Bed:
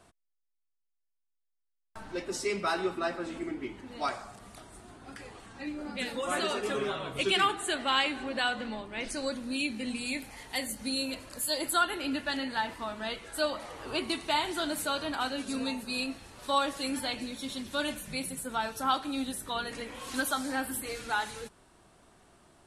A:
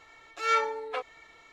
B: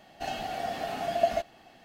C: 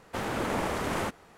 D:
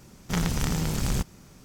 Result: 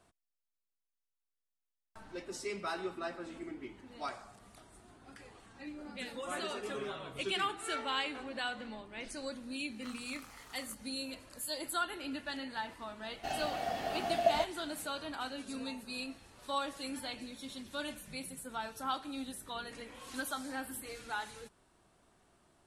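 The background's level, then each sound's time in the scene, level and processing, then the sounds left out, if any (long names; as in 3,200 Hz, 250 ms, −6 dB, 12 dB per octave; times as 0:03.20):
bed −8 dB
0:07.21: mix in A −16 dB
0:09.52: mix in D −13.5 dB + four-pole ladder high-pass 1,100 Hz, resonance 70%
0:13.03: mix in B −3.5 dB
not used: C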